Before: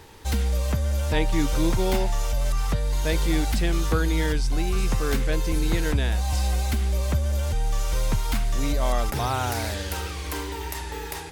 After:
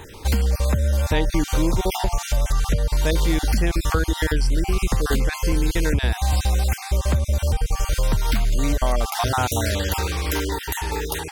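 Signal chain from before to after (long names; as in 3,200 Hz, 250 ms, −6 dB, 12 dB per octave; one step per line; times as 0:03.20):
time-frequency cells dropped at random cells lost 28%
downward compressor 3 to 1, threshold −25 dBFS, peak gain reduction 6.5 dB
level +8 dB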